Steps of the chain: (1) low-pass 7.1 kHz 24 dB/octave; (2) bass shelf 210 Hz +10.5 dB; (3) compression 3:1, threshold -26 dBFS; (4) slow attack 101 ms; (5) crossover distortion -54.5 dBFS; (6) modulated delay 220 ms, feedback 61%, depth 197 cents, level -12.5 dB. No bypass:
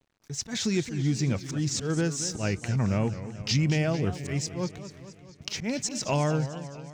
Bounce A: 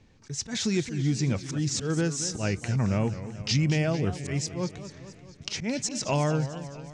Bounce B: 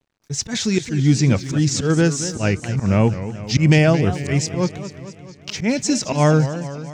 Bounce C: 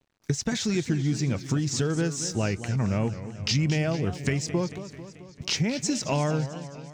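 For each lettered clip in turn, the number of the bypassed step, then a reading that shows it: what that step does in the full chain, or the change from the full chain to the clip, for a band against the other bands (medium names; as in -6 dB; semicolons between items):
5, distortion -29 dB; 3, mean gain reduction 8.5 dB; 4, crest factor change +2.5 dB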